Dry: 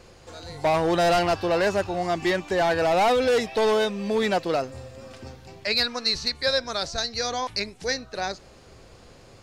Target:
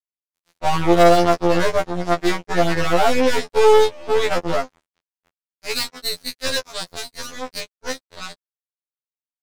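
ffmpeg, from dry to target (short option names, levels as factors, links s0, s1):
-af "adynamicequalizer=threshold=0.0178:dfrequency=440:dqfactor=0.89:tfrequency=440:tqfactor=0.89:attack=5:release=100:ratio=0.375:range=2:mode=boostabove:tftype=bell,aeval=exprs='0.316*(cos(1*acos(clip(val(0)/0.316,-1,1)))-cos(1*PI/2))+0.0708*(cos(2*acos(clip(val(0)/0.316,-1,1)))-cos(2*PI/2))+0.0891*(cos(3*acos(clip(val(0)/0.316,-1,1)))-cos(3*PI/2))+0.00501*(cos(5*acos(clip(val(0)/0.316,-1,1)))-cos(5*PI/2))':c=same,aeval=exprs='sgn(val(0))*max(abs(val(0))-0.0106,0)':c=same,apsyclip=6.68,afftfilt=real='re*2*eq(mod(b,4),0)':imag='im*2*eq(mod(b,4),0)':win_size=2048:overlap=0.75,volume=0.501"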